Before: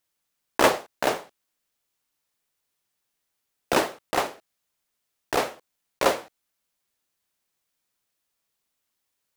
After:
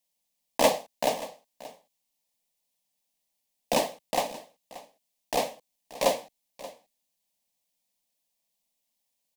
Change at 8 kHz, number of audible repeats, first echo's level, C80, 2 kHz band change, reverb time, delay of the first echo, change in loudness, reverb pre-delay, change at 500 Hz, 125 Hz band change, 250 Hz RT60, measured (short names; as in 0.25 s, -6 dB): -0.5 dB, 1, -17.5 dB, none, -8.0 dB, none, 0.58 s, -2.5 dB, none, -1.5 dB, -4.0 dB, none